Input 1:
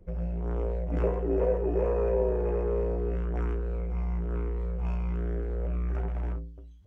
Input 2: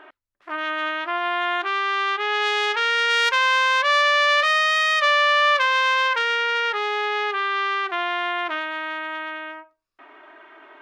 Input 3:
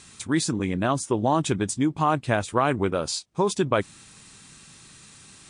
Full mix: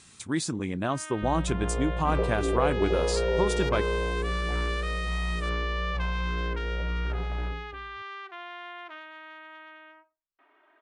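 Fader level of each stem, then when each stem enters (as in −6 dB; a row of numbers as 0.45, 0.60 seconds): −0.5, −16.5, −5.0 decibels; 1.15, 0.40, 0.00 seconds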